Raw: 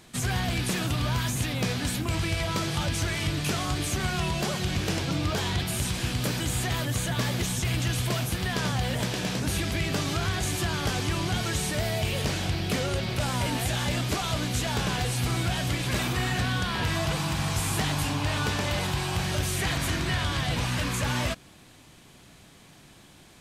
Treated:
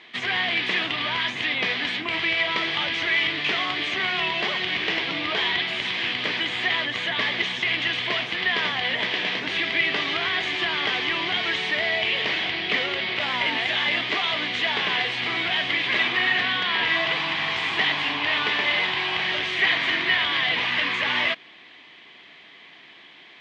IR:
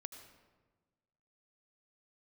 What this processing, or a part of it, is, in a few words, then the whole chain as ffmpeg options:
phone earpiece: -af "highpass=500,equalizer=frequency=550:width_type=q:width=4:gain=-8,equalizer=frequency=820:width_type=q:width=4:gain=-5,equalizer=frequency=1400:width_type=q:width=4:gain=-7,equalizer=frequency=2000:width_type=q:width=4:gain=9,equalizer=frequency=3200:width_type=q:width=4:gain=5,lowpass=frequency=3600:width=0.5412,lowpass=frequency=3600:width=1.3066,volume=7.5dB"

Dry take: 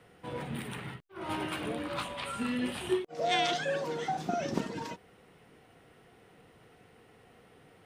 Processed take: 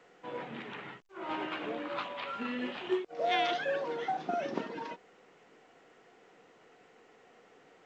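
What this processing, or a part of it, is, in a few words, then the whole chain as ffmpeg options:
telephone: -af "highpass=300,lowpass=3100" -ar 16000 -c:a pcm_alaw

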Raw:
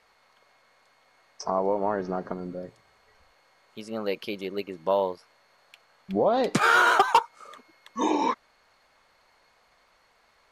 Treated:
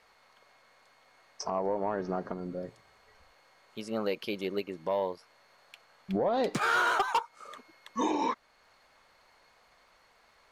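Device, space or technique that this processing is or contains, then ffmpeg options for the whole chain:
soft clipper into limiter: -af "asoftclip=type=tanh:threshold=-12.5dB,alimiter=limit=-20.5dB:level=0:latency=1:release=402"

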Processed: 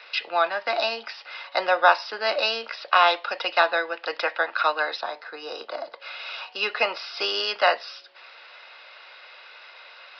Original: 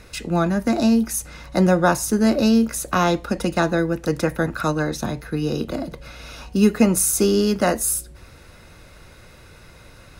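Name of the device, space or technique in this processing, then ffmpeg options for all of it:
musical greeting card: -filter_complex "[0:a]aresample=11025,aresample=44100,highpass=frequency=660:width=0.5412,highpass=frequency=660:width=1.3066,equalizer=frequency=2900:width_type=o:width=0.56:gain=6,asettb=1/sr,asplit=3[link_01][link_02][link_03];[link_01]atrim=end=5.014[link_04];[link_02]atrim=start=5.01:end=6,asetpts=PTS-STARTPTS,afade=type=in:duration=0.004:curve=qsin,afade=type=out:start_time=0.986:duration=0.004:curve=qsin,equalizer=frequency=2800:width_type=o:width=1.1:gain=-10[link_05];[link_03]atrim=start=5.996[link_06];[link_04][link_05]acrossfade=duration=0.004:curve1=hsin:curve2=qsin[link_07];[link_07][link_06]acrossfade=duration=0.004:curve1=qsin:curve2=hsin,volume=3.5dB"

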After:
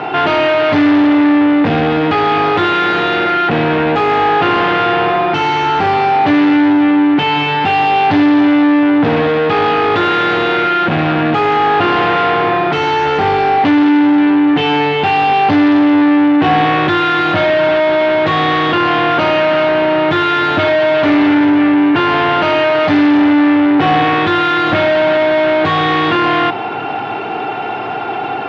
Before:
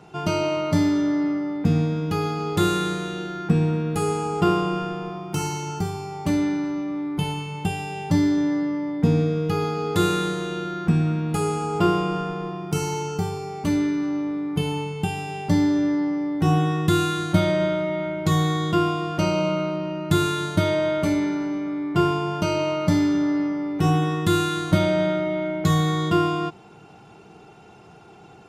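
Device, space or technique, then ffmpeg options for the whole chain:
overdrive pedal into a guitar cabinet: -filter_complex "[0:a]asplit=2[link_01][link_02];[link_02]highpass=frequency=720:poles=1,volume=39dB,asoftclip=type=tanh:threshold=-5dB[link_03];[link_01][link_03]amix=inputs=2:normalize=0,lowpass=frequency=5300:poles=1,volume=-6dB,highpass=91,equalizer=frequency=110:width_type=q:width=4:gain=7,equalizer=frequency=180:width_type=q:width=4:gain=-8,equalizer=frequency=270:width_type=q:width=4:gain=7,equalizer=frequency=750:width_type=q:width=4:gain=5,equalizer=frequency=1700:width_type=q:width=4:gain=3,lowpass=frequency=3400:width=0.5412,lowpass=frequency=3400:width=1.3066,volume=-2dB"

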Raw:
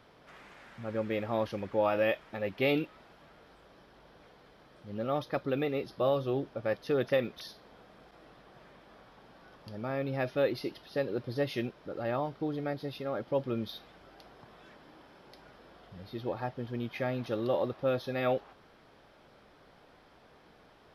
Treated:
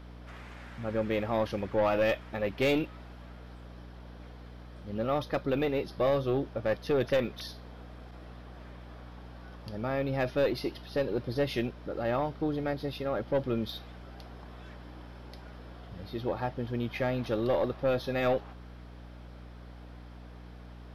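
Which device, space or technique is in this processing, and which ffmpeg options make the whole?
valve amplifier with mains hum: -af "aeval=exprs='(tanh(15.8*val(0)+0.25)-tanh(0.25))/15.8':channel_layout=same,aeval=exprs='val(0)+0.00316*(sin(2*PI*60*n/s)+sin(2*PI*2*60*n/s)/2+sin(2*PI*3*60*n/s)/3+sin(2*PI*4*60*n/s)/4+sin(2*PI*5*60*n/s)/5)':channel_layout=same,volume=4dB"

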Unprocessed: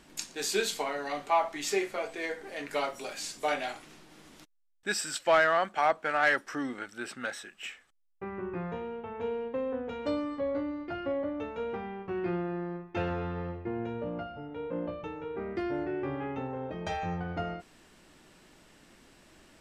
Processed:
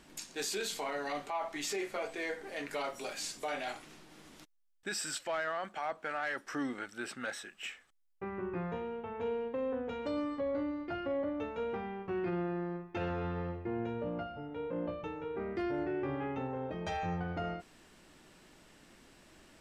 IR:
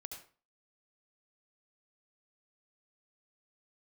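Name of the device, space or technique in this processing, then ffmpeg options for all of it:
stacked limiters: -af "alimiter=limit=-21.5dB:level=0:latency=1:release=182,alimiter=level_in=2.5dB:limit=-24dB:level=0:latency=1:release=11,volume=-2.5dB,volume=-1.5dB"

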